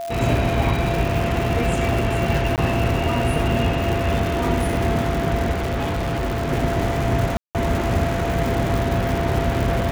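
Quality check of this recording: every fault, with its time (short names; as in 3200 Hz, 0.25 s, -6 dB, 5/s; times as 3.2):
crackle 290/s -24 dBFS
tone 680 Hz -26 dBFS
2.56–2.58 gap 18 ms
5.51–6.52 clipped -20 dBFS
7.37–7.55 gap 0.178 s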